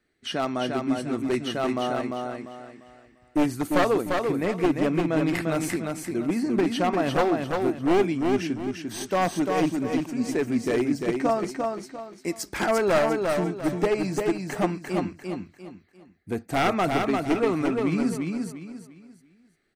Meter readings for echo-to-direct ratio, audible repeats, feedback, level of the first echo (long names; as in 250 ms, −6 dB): −3.5 dB, 4, 32%, −4.0 dB